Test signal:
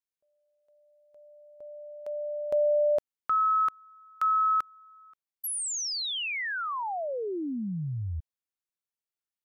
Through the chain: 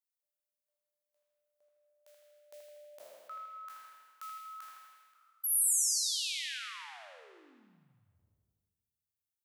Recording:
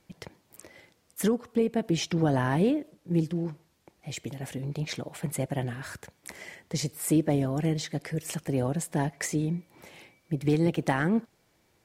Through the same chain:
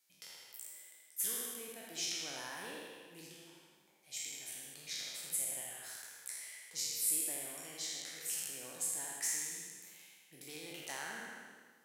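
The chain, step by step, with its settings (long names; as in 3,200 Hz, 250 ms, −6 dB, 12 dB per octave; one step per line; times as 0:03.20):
peak hold with a decay on every bin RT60 1.56 s
first difference
bucket-brigade delay 80 ms, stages 2,048, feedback 58%, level −4 dB
level −5 dB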